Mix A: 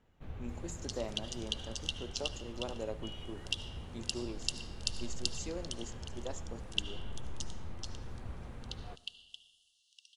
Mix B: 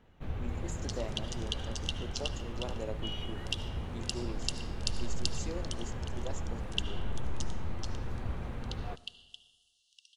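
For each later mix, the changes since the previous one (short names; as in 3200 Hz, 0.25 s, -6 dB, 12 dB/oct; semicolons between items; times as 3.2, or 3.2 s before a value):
first sound +7.5 dB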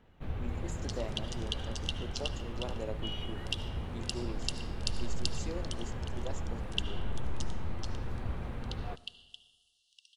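master: add bell 6500 Hz -3.5 dB 0.48 oct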